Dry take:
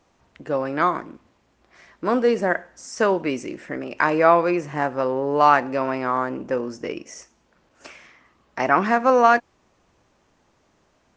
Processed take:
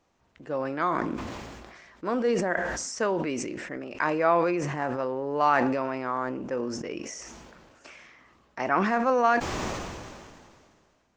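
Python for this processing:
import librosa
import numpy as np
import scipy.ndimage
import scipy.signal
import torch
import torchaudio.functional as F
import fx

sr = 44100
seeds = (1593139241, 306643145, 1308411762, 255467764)

y = fx.sustainer(x, sr, db_per_s=28.0)
y = y * librosa.db_to_amplitude(-7.5)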